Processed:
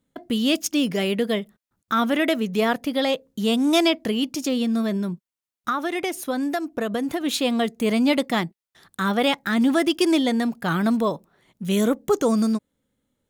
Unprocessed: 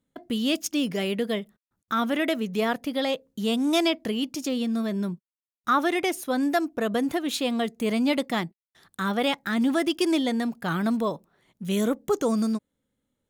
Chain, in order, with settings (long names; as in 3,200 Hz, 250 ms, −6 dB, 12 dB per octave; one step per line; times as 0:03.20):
0:04.96–0:07.21: downward compressor, threshold −26 dBFS, peak gain reduction 8.5 dB
level +4 dB